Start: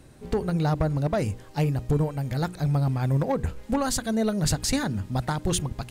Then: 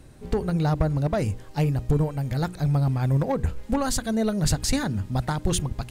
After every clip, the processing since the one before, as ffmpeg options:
ffmpeg -i in.wav -af "lowshelf=frequency=75:gain=7" out.wav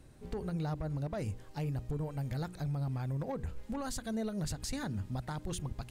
ffmpeg -i in.wav -af "alimiter=limit=-20.5dB:level=0:latency=1:release=125,volume=-8.5dB" out.wav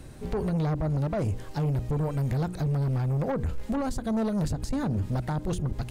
ffmpeg -i in.wav -filter_complex "[0:a]acrossover=split=990[link_01][link_02];[link_02]acompressor=threshold=-54dB:ratio=6[link_03];[link_01][link_03]amix=inputs=2:normalize=0,aeval=exprs='0.0398*sin(PI/2*1.58*val(0)/0.0398)':channel_layout=same,volume=4.5dB" out.wav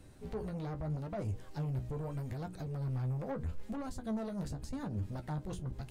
ffmpeg -i in.wav -af "flanger=delay=9.9:depth=6:regen=41:speed=0.8:shape=sinusoidal,volume=-7dB" out.wav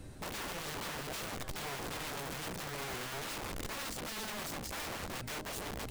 ffmpeg -i in.wav -af "aeval=exprs='(mod(141*val(0)+1,2)-1)/141':channel_layout=same,volume=7dB" out.wav

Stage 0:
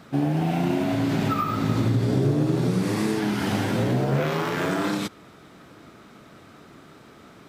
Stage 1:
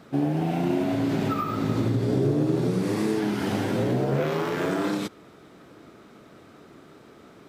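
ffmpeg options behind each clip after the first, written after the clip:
ffmpeg -i in.wav -af "equalizer=frequency=410:width=1:gain=5.5,volume=-4dB" out.wav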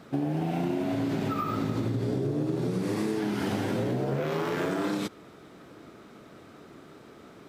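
ffmpeg -i in.wav -af "acompressor=threshold=-25dB:ratio=6" out.wav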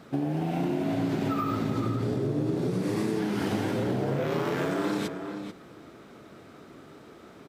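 ffmpeg -i in.wav -filter_complex "[0:a]asplit=2[link_01][link_02];[link_02]adelay=437.3,volume=-7dB,highshelf=frequency=4000:gain=-9.84[link_03];[link_01][link_03]amix=inputs=2:normalize=0" out.wav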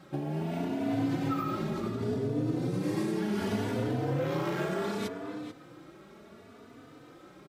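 ffmpeg -i in.wav -filter_complex "[0:a]asplit=2[link_01][link_02];[link_02]adelay=3.3,afreqshift=0.68[link_03];[link_01][link_03]amix=inputs=2:normalize=1" out.wav

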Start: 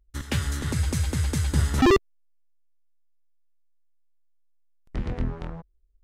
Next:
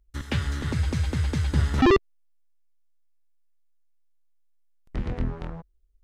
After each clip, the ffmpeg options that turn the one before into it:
ffmpeg -i in.wav -filter_complex "[0:a]acrossover=split=5100[link_01][link_02];[link_02]acompressor=threshold=-53dB:ratio=4:attack=1:release=60[link_03];[link_01][link_03]amix=inputs=2:normalize=0" out.wav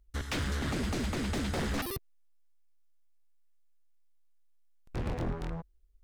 ffmpeg -i in.wav -af "aeval=exprs='0.0447*(abs(mod(val(0)/0.0447+3,4)-2)-1)':channel_layout=same" out.wav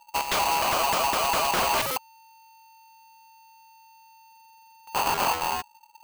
ffmpeg -i in.wav -af "aeval=exprs='val(0)*sgn(sin(2*PI*900*n/s))':channel_layout=same,volume=8dB" out.wav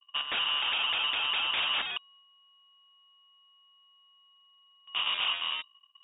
ffmpeg -i in.wav -af "lowpass=frequency=3200:width_type=q:width=0.5098,lowpass=frequency=3200:width_type=q:width=0.6013,lowpass=frequency=3200:width_type=q:width=0.9,lowpass=frequency=3200:width_type=q:width=2.563,afreqshift=-3800,agate=range=-33dB:threshold=-51dB:ratio=3:detection=peak,volume=-5dB" out.wav

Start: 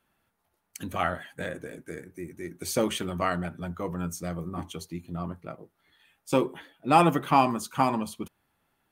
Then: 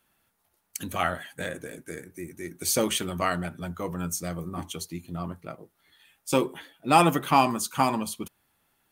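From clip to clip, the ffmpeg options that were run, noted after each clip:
ffmpeg -i in.wav -af "highshelf=frequency=3300:gain=9" out.wav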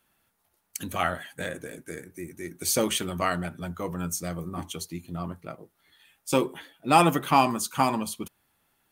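ffmpeg -i in.wav -af anull out.wav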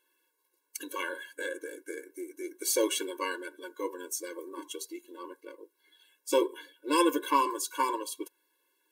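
ffmpeg -i in.wav -af "afftfilt=real='re*eq(mod(floor(b*sr/1024/290),2),1)':imag='im*eq(mod(floor(b*sr/1024/290),2),1)':win_size=1024:overlap=0.75" out.wav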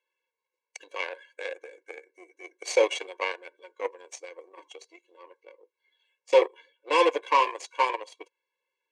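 ffmpeg -i in.wav -af "asoftclip=type=tanh:threshold=-15.5dB,aeval=exprs='0.158*(cos(1*acos(clip(val(0)/0.158,-1,1)))-cos(1*PI/2))+0.00562*(cos(4*acos(clip(val(0)/0.158,-1,1)))-cos(4*PI/2))+0.0178*(cos(7*acos(clip(val(0)/0.158,-1,1)))-cos(7*PI/2))':channel_layout=same,highpass=frequency=460:width=0.5412,highpass=frequency=460:width=1.3066,equalizer=frequency=500:width_type=q:width=4:gain=6,equalizer=frequency=740:width_type=q:width=4:gain=7,equalizer=frequency=1400:width_type=q:width=4:gain=-9,equalizer=frequency=2300:width_type=q:width=4:gain=9,equalizer=frequency=3700:width_type=q:width=4:gain=-4,equalizer=frequency=5200:width_type=q:width=4:gain=-5,lowpass=frequency=6000:width=0.5412,lowpass=frequency=6000:width=1.3066,volume=5dB" out.wav

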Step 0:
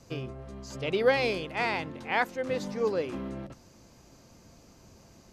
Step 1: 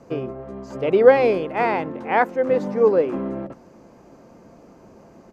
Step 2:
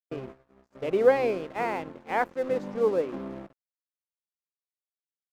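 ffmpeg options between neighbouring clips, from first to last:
ffmpeg -i in.wav -af "firequalizer=gain_entry='entry(100,0);entry(180,10);entry(440,14);entry(3700,-5)':delay=0.05:min_phase=1,volume=-1.5dB" out.wav
ffmpeg -i in.wav -af "aeval=exprs='sgn(val(0))*max(abs(val(0))-0.015,0)':channel_layout=same,agate=range=-33dB:threshold=-31dB:ratio=3:detection=peak,volume=-7.5dB" out.wav

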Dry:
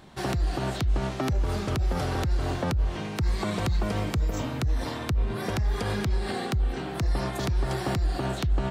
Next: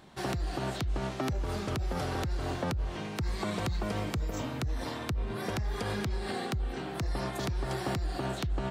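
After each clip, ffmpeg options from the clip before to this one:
ffmpeg -i in.wav -af "lowshelf=frequency=100:gain=-5.5,volume=-3.5dB" out.wav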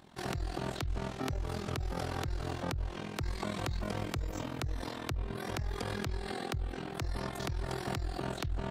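ffmpeg -i in.wav -af "tremolo=f=42:d=0.788" out.wav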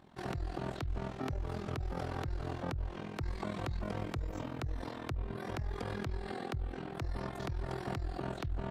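ffmpeg -i in.wav -af "highshelf=frequency=3300:gain=-10.5,volume=-1.5dB" out.wav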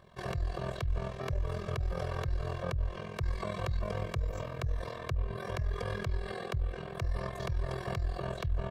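ffmpeg -i in.wav -af "aecho=1:1:1.8:0.97" out.wav

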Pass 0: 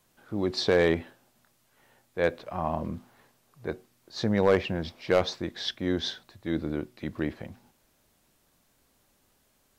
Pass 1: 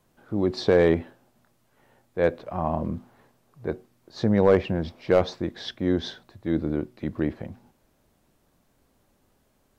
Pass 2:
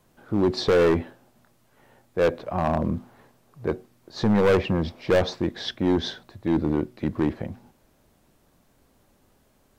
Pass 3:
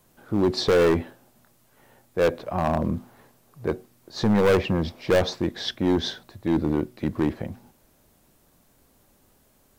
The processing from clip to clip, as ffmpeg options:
ffmpeg -i in.wav -af "tiltshelf=frequency=1400:gain=5" out.wav
ffmpeg -i in.wav -af "volume=19dB,asoftclip=hard,volume=-19dB,volume=4dB" out.wav
ffmpeg -i in.wav -af "crystalizer=i=1:c=0" out.wav

